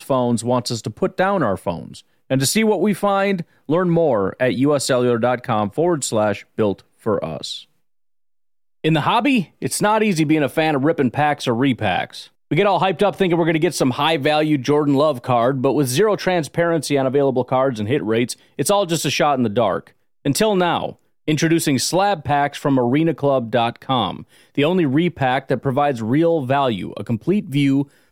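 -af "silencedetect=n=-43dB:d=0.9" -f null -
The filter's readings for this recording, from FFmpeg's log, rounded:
silence_start: 7.64
silence_end: 8.84 | silence_duration: 1.20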